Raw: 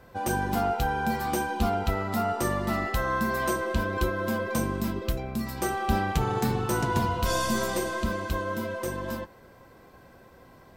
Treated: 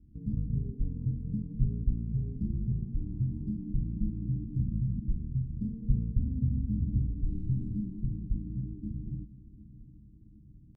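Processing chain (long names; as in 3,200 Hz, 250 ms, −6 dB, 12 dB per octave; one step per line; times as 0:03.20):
inverse Chebyshev low-pass filter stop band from 1,000 Hz, stop band 50 dB
pitch shifter −9.5 semitones
on a send: repeating echo 747 ms, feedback 53%, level −18 dB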